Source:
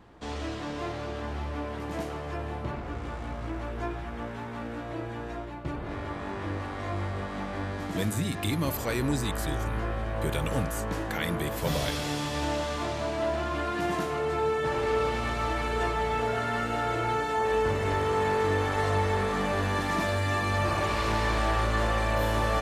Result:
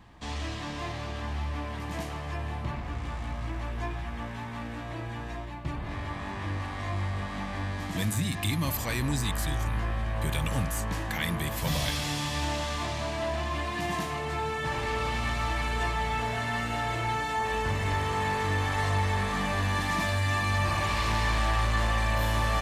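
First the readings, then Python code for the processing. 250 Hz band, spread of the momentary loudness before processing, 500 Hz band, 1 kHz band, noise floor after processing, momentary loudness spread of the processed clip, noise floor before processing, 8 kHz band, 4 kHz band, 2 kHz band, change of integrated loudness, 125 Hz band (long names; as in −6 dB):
−2.5 dB, 10 LU, −6.5 dB, −1.0 dB, −37 dBFS, 9 LU, −37 dBFS, +2.5 dB, +2.5 dB, +1.0 dB, −0.5 dB, +2.0 dB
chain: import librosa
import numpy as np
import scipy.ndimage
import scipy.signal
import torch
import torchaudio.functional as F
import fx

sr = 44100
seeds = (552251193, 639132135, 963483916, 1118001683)

p1 = fx.peak_eq(x, sr, hz=430.0, db=-11.5, octaves=1.3)
p2 = fx.notch(p1, sr, hz=1400.0, q=6.9)
p3 = 10.0 ** (-29.0 / 20.0) * np.tanh(p2 / 10.0 ** (-29.0 / 20.0))
y = p2 + F.gain(torch.from_numpy(p3), -6.0).numpy()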